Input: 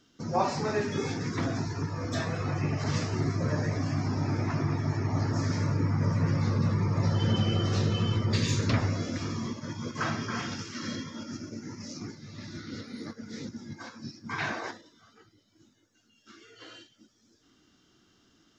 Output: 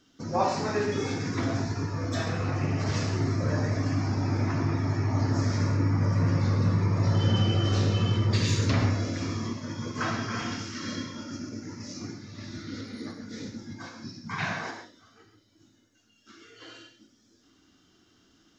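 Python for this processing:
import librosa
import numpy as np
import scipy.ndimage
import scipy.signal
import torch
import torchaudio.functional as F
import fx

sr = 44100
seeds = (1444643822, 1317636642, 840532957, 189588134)

y = fx.graphic_eq_31(x, sr, hz=(160, 315, 500), db=(11, -11, -4), at=(14.2, 14.67))
y = fx.rev_gated(y, sr, seeds[0], gate_ms=160, shape='flat', drr_db=3.5)
y = fx.doppler_dist(y, sr, depth_ms=0.14, at=(2.27, 2.93))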